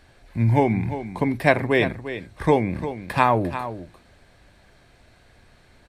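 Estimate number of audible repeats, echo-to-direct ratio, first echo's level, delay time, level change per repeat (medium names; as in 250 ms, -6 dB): 1, -11.5 dB, -11.5 dB, 349 ms, no regular repeats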